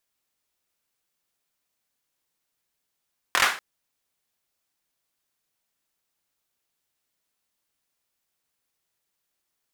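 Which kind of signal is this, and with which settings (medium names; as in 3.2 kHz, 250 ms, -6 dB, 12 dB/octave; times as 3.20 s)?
hand clap length 0.24 s, apart 24 ms, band 1.4 kHz, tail 0.38 s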